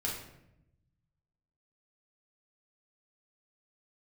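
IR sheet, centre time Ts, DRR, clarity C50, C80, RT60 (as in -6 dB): 42 ms, -3.5 dB, 3.5 dB, 7.0 dB, 0.80 s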